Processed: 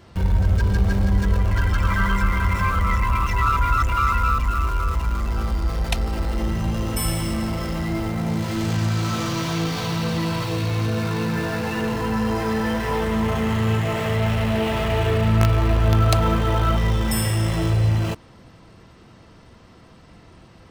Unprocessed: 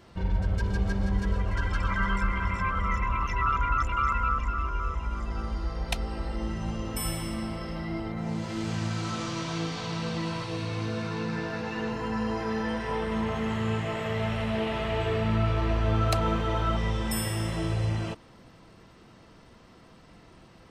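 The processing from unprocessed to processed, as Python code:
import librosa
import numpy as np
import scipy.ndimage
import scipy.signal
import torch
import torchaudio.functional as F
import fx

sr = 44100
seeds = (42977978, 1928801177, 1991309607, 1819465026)

p1 = fx.peak_eq(x, sr, hz=85.0, db=5.5, octaves=1.2)
p2 = fx.quant_companded(p1, sr, bits=2)
p3 = p1 + (p2 * librosa.db_to_amplitude(-11.5))
y = p3 * librosa.db_to_amplitude(4.0)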